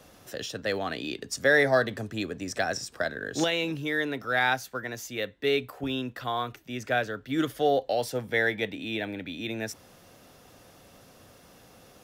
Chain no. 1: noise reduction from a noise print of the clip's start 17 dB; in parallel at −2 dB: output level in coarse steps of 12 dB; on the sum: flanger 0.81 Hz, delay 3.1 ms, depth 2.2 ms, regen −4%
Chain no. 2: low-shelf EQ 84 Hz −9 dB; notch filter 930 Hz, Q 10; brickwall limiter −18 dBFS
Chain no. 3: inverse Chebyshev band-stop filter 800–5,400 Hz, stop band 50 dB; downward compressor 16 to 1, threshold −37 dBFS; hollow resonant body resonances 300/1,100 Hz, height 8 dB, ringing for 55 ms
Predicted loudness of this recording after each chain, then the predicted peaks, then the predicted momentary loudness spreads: −28.0, −31.5, −39.5 LKFS; −9.5, −18.0, −25.5 dBFS; 12, 8, 20 LU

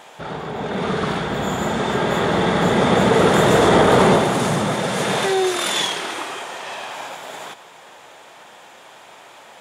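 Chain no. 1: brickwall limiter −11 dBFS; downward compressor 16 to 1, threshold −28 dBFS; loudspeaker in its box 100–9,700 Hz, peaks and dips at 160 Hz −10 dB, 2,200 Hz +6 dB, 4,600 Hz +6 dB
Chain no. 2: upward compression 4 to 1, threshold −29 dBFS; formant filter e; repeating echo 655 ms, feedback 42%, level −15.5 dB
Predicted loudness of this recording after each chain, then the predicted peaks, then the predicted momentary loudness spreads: −32.0, −28.5 LKFS; −18.5, −11.5 dBFS; 12, 22 LU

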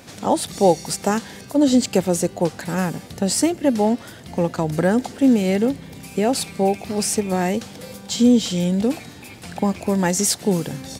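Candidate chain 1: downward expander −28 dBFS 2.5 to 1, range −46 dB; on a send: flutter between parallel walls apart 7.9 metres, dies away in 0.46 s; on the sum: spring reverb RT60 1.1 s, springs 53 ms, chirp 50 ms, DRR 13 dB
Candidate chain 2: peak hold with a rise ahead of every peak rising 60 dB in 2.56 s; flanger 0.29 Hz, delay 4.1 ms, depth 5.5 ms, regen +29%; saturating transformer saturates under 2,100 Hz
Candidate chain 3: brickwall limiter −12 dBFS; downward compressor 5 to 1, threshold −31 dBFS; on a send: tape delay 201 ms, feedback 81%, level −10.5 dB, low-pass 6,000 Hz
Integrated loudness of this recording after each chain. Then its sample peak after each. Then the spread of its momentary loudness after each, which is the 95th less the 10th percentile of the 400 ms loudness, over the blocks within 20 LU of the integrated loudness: −19.0, −23.5, −34.0 LKFS; −2.0, −3.5, −18.0 dBFS; 9, 6, 5 LU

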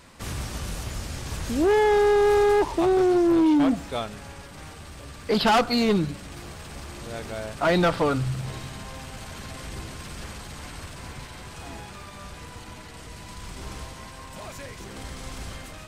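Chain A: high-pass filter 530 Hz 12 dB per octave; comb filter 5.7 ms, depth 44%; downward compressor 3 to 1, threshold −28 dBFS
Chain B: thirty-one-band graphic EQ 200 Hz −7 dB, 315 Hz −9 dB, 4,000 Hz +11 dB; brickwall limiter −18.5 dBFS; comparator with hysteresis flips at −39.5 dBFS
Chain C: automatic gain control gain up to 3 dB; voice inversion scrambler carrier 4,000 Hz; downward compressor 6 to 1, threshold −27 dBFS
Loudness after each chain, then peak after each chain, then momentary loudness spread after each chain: −35.0, −31.5, −29.0 LKFS; −16.5, −26.5, −16.0 dBFS; 13, 2, 10 LU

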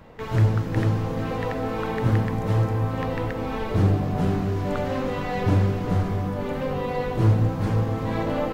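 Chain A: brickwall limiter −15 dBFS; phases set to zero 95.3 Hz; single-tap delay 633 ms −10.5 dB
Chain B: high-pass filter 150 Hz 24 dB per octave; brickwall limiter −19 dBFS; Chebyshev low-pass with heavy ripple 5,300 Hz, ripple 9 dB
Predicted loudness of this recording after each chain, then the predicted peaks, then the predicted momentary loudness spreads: −27.5, −36.0 LKFS; −9.5, −21.0 dBFS; 5, 2 LU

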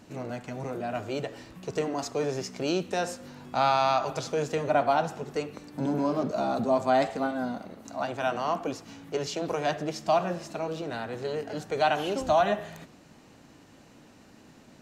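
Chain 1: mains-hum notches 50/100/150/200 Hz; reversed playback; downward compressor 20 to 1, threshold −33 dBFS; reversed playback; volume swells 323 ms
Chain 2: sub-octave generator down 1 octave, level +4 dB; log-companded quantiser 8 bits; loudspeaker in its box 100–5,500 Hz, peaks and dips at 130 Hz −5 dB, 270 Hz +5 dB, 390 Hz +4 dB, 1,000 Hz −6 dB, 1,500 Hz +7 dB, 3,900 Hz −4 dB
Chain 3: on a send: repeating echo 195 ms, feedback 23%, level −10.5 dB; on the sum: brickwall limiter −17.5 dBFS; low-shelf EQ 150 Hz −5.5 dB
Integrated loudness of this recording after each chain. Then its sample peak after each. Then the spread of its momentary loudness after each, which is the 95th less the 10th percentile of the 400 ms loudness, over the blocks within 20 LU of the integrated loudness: −39.5, −27.5, −31.0 LKFS; −22.5, −10.5, −17.0 dBFS; 17, 10, 10 LU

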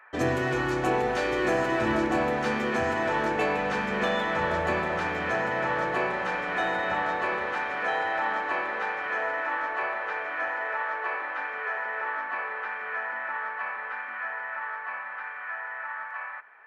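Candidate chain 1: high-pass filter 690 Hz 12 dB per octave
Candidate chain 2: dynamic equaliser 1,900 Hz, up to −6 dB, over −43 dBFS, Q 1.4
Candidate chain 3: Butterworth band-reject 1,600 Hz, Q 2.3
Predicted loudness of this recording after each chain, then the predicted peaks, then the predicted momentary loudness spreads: −30.0, −30.5, −30.0 LKFS; −16.5, −14.5, −14.0 dBFS; 6, 11, 13 LU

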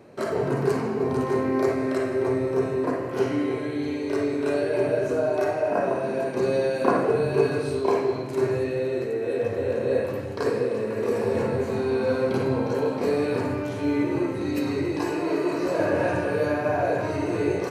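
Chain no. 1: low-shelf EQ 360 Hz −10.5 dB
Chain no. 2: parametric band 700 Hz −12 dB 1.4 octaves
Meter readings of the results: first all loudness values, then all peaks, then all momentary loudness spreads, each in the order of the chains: −29.0, −30.0 LKFS; −7.0, −11.0 dBFS; 4, 4 LU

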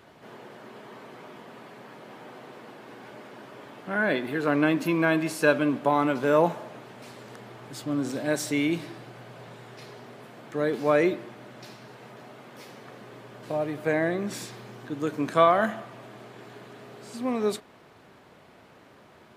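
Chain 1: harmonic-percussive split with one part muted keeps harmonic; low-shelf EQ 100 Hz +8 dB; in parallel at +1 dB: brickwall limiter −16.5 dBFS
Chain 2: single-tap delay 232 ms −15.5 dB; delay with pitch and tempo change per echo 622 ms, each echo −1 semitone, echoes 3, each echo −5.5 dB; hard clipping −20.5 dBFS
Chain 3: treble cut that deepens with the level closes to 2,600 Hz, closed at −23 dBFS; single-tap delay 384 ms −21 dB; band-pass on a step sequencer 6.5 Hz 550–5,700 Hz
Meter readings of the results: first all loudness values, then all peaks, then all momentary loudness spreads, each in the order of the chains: −21.0, −28.5, −37.5 LKFS; −4.0, −20.5, −18.5 dBFS; 23, 19, 23 LU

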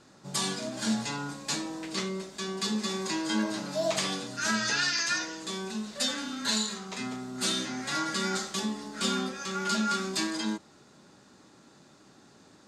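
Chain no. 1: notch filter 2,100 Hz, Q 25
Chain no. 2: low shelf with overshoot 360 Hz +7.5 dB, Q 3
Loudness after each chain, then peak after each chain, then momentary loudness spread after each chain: −30.5, −25.0 LKFS; −15.5, −8.5 dBFS; 8, 7 LU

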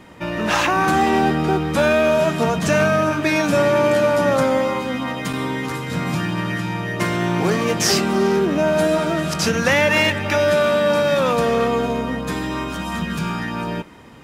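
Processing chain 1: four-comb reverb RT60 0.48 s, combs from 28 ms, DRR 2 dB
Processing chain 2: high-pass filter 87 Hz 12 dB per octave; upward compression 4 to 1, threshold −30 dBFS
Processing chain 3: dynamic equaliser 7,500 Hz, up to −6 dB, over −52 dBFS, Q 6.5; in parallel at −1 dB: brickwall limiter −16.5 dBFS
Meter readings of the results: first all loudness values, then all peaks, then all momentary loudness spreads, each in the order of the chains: −17.0, −19.0, −16.0 LKFS; −2.5, −5.0, −3.0 dBFS; 11, 9, 7 LU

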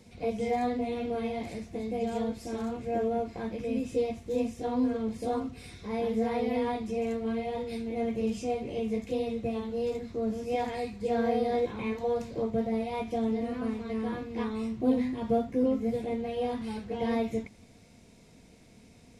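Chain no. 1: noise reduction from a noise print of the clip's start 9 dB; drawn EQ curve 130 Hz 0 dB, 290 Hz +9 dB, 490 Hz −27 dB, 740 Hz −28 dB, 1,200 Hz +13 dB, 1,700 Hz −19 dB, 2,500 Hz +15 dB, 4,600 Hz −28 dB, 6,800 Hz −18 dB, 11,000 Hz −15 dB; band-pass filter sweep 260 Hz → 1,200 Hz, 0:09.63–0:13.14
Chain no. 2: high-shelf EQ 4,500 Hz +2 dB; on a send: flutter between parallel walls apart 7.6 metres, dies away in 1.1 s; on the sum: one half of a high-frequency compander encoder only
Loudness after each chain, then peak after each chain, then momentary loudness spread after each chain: −33.5, −27.5 LKFS; −13.5, −12.5 dBFS; 18, 9 LU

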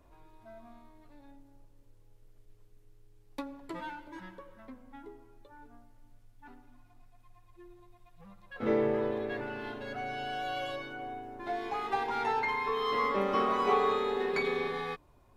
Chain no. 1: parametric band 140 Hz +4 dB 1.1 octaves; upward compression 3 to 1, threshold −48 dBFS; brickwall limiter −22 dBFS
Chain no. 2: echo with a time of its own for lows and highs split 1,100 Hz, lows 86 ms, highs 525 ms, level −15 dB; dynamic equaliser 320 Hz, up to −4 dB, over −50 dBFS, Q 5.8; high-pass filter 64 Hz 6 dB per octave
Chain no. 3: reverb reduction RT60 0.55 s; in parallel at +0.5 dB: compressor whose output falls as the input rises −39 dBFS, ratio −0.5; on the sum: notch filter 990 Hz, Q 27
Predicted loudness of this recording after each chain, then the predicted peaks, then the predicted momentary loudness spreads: −33.5, −32.5, −32.0 LKFS; −22.0, −15.0, −15.5 dBFS; 20, 20, 19 LU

